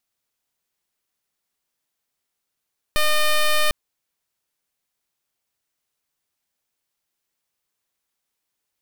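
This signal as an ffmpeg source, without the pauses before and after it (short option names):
-f lavfi -i "aevalsrc='0.141*(2*lt(mod(608*t,1),0.09)-1)':d=0.75:s=44100"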